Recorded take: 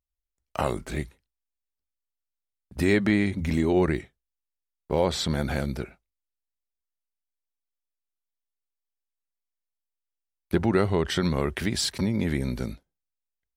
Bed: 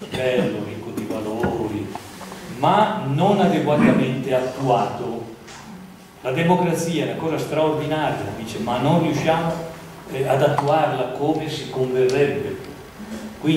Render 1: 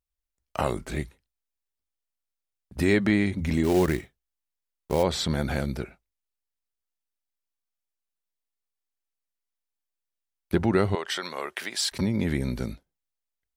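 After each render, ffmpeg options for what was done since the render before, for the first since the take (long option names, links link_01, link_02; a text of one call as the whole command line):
ffmpeg -i in.wav -filter_complex "[0:a]asplit=3[link_01][link_02][link_03];[link_01]afade=type=out:start_time=3.63:duration=0.02[link_04];[link_02]acrusher=bits=4:mode=log:mix=0:aa=0.000001,afade=type=in:start_time=3.63:duration=0.02,afade=type=out:start_time=5.02:duration=0.02[link_05];[link_03]afade=type=in:start_time=5.02:duration=0.02[link_06];[link_04][link_05][link_06]amix=inputs=3:normalize=0,asettb=1/sr,asplit=3[link_07][link_08][link_09];[link_07]atrim=end=10.954[link_10];[link_08]atrim=start=10.95:end=11.92,asetpts=PTS-STARTPTS,afade=type=in:duration=0.004:curve=qsin,afade=type=out:start_time=0.966:duration=0.004:curve=qsin,highpass=660[link_11];[link_09]atrim=start=11.916[link_12];[link_10][link_11]acrossfade=duration=0.004:curve1=hsin:curve2=qsin[link_13];[link_13][link_12]acrossfade=duration=0.004:curve1=qsin:curve2=hsin" out.wav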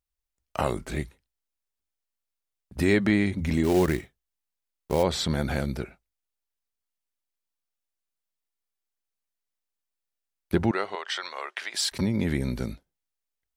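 ffmpeg -i in.wav -filter_complex "[0:a]asettb=1/sr,asplit=3[link_01][link_02][link_03];[link_01]atrim=end=10.714[link_04];[link_02]atrim=start=10.71:end=11.74,asetpts=PTS-STARTPTS,afade=type=in:duration=0.004:curve=qsin,afade=type=out:start_time=1.026:duration=0.004:curve=qsin,highpass=640,lowpass=6100[link_05];[link_03]atrim=start=11.736[link_06];[link_04][link_05]acrossfade=duration=0.004:curve1=hsin:curve2=qsin[link_07];[link_07][link_06]acrossfade=duration=0.004:curve1=qsin:curve2=hsin" out.wav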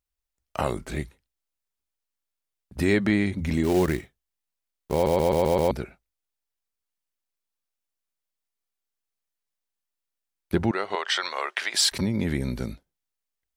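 ffmpeg -i in.wav -filter_complex "[0:a]asettb=1/sr,asplit=3[link_01][link_02][link_03];[link_01]atrim=end=10.904[link_04];[link_02]atrim=start=10.9:end=11.99,asetpts=PTS-STARTPTS,afade=type=in:duration=0.004:curve=qsin,afade=type=out:start_time=1.086:duration=0.004:curve=qsin,acontrast=52[link_05];[link_03]atrim=start=11.986[link_06];[link_04][link_05]acrossfade=duration=0.004:curve1=hsin:curve2=qsin[link_07];[link_07][link_06]acrossfade=duration=0.004:curve1=qsin:curve2=hsin,asplit=7[link_08][link_09][link_10][link_11][link_12][link_13][link_14];[link_08]atrim=end=5.062[link_15];[link_09]atrim=start=4.928:end=5.062[link_16];[link_10]atrim=start=4.928:end=5.062[link_17];[link_11]atrim=start=4.928:end=5.062[link_18];[link_12]atrim=start=4.928:end=5.062[link_19];[link_13]atrim=start=4.928:end=5.062[link_20];[link_14]atrim=start=5.708[link_21];[link_15][link_16]acrossfade=duration=0.004:curve1=hsin:curve2=hsin[link_22];[link_22][link_17]acrossfade=duration=0.004:curve1=hsin:curve2=hsin[link_23];[link_23][link_18]acrossfade=duration=0.004:curve1=hsin:curve2=hsin[link_24];[link_24][link_19]acrossfade=duration=0.004:curve1=hsin:curve2=hsin[link_25];[link_25][link_20]acrossfade=duration=0.004:curve1=hsin:curve2=hsin[link_26];[link_26][link_21]acrossfade=duration=0.004:curve1=hsin:curve2=hsin" out.wav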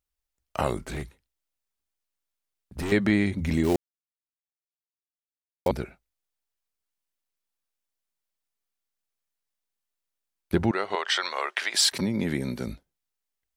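ffmpeg -i in.wav -filter_complex "[0:a]asettb=1/sr,asplit=3[link_01][link_02][link_03];[link_01]atrim=end=0.924[link_04];[link_02]atrim=start=0.92:end=2.92,asetpts=PTS-STARTPTS,afade=type=in:duration=0.004:curve=qsin,afade=type=out:start_time=1.996:duration=0.004:curve=qsin,asoftclip=type=hard:threshold=-28dB[link_05];[link_03]atrim=start=2.916[link_06];[link_04][link_05]acrossfade=duration=0.004:curve1=hsin:curve2=qsin[link_07];[link_07][link_06]acrossfade=duration=0.004:curve1=qsin:curve2=hsin,asettb=1/sr,asplit=3[link_08][link_09][link_10];[link_08]atrim=end=11.054[link_11];[link_09]atrim=start=11.05:end=12.67,asetpts=PTS-STARTPTS,afade=type=in:duration=0.004:curve=qsin,afade=type=out:start_time=1.616:duration=0.004:curve=qsin,highpass=140[link_12];[link_10]atrim=start=12.666[link_13];[link_11][link_12]acrossfade=duration=0.004:curve1=hsin:curve2=qsin[link_14];[link_14][link_13]acrossfade=duration=0.004:curve1=qsin:curve2=hsin,asplit=3[link_15][link_16][link_17];[link_15]atrim=end=3.76,asetpts=PTS-STARTPTS,afade=type=out:start_time=3.756:duration=0.004:curve=hsin[link_18];[link_16]atrim=start=3.76:end=5.66,asetpts=PTS-STARTPTS,volume=0[link_19];[link_17]atrim=start=5.66,asetpts=PTS-STARTPTS,afade=type=in:duration=0.004:curve=hsin[link_20];[link_18][link_19][link_20]concat=n=3:v=0:a=1" out.wav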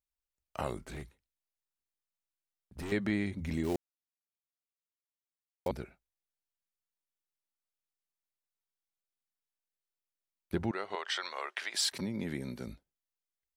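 ffmpeg -i in.wav -af "volume=-9.5dB" out.wav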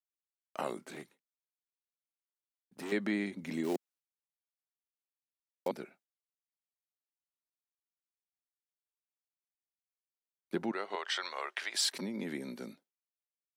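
ffmpeg -i in.wav -af "highpass=frequency=200:width=0.5412,highpass=frequency=200:width=1.3066,agate=range=-33dB:threshold=-60dB:ratio=3:detection=peak" out.wav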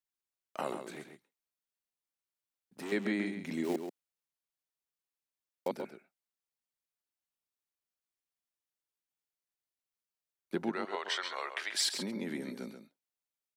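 ffmpeg -i in.wav -filter_complex "[0:a]asplit=2[link_01][link_02];[link_02]adelay=134.1,volume=-8dB,highshelf=frequency=4000:gain=-3.02[link_03];[link_01][link_03]amix=inputs=2:normalize=0" out.wav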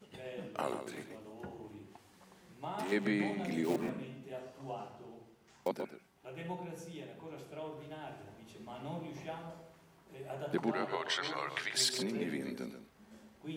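ffmpeg -i in.wav -i bed.wav -filter_complex "[1:a]volume=-25dB[link_01];[0:a][link_01]amix=inputs=2:normalize=0" out.wav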